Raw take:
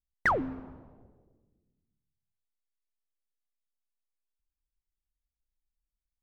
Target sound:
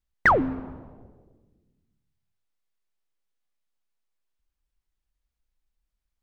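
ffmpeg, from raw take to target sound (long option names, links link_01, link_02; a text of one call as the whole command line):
ffmpeg -i in.wav -af "highshelf=frequency=6200:gain=-9,volume=8dB" out.wav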